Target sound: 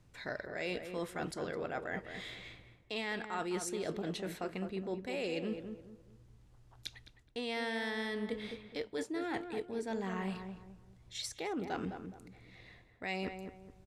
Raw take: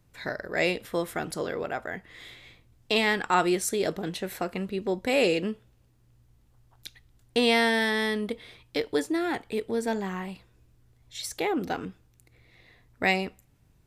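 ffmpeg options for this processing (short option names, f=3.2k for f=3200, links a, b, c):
-filter_complex "[0:a]lowpass=8.9k,areverse,acompressor=threshold=-36dB:ratio=6,areverse,asplit=2[a][b];[b]adelay=210,lowpass=f=1.3k:p=1,volume=-6.5dB,asplit=2[c][d];[d]adelay=210,lowpass=f=1.3k:p=1,volume=0.34,asplit=2[e][f];[f]adelay=210,lowpass=f=1.3k:p=1,volume=0.34,asplit=2[g][h];[h]adelay=210,lowpass=f=1.3k:p=1,volume=0.34[i];[a][c][e][g][i]amix=inputs=5:normalize=0"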